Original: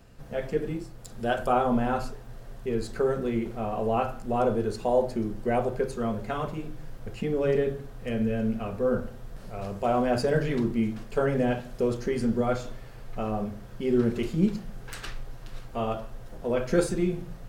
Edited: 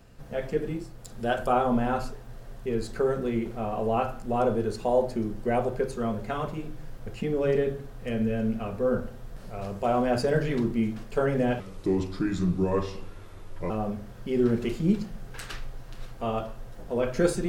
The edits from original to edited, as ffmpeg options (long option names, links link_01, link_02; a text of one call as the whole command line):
ffmpeg -i in.wav -filter_complex "[0:a]asplit=3[link_01][link_02][link_03];[link_01]atrim=end=11.604[link_04];[link_02]atrim=start=11.6:end=13.24,asetpts=PTS-STARTPTS,asetrate=34398,aresample=44100,atrim=end_sample=92723,asetpts=PTS-STARTPTS[link_05];[link_03]atrim=start=13.236[link_06];[link_04][link_05]acrossfade=duration=0.004:curve1=hsin:curve2=hsin[link_07];[link_07][link_06]acrossfade=duration=0.004:curve1=hsin:curve2=hsin" out.wav